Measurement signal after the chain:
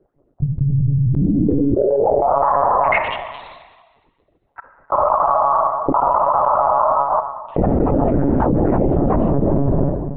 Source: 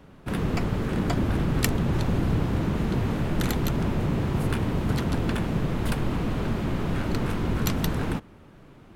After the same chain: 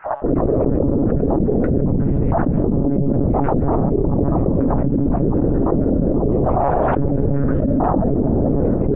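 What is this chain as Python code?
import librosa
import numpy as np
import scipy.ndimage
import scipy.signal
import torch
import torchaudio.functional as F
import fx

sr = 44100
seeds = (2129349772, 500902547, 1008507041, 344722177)

p1 = fx.spec_dropout(x, sr, seeds[0], share_pct=67)
p2 = fx.rider(p1, sr, range_db=5, speed_s=0.5)
p3 = p1 + F.gain(torch.from_numpy(p2), 2.0).numpy()
p4 = fx.noise_vocoder(p3, sr, seeds[1], bands=12)
p5 = fx.ladder_lowpass(p4, sr, hz=700.0, resonance_pct=30)
p6 = fx.step_gate(p5, sr, bpm=100, pattern='xxx.xx.xxx.xxxx', floor_db=-60.0, edge_ms=4.5)
p7 = p6 + fx.echo_feedback(p6, sr, ms=67, feedback_pct=60, wet_db=-24, dry=0)
p8 = fx.rev_schroeder(p7, sr, rt60_s=1.5, comb_ms=29, drr_db=9.0)
p9 = fx.lpc_monotone(p8, sr, seeds[2], pitch_hz=140.0, order=16)
p10 = fx.env_flatten(p9, sr, amount_pct=100)
y = F.gain(torch.from_numpy(p10), 6.5).numpy()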